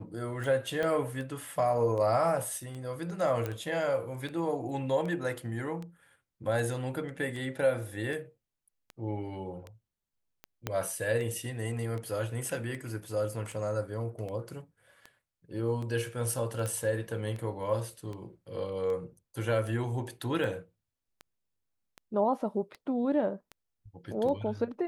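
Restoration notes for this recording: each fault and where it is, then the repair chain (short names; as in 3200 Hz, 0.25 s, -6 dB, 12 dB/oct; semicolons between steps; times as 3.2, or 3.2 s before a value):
tick 78 rpm
0.83 pop -20 dBFS
3.46 pop -20 dBFS
10.67 pop -16 dBFS
16.66 pop -21 dBFS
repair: de-click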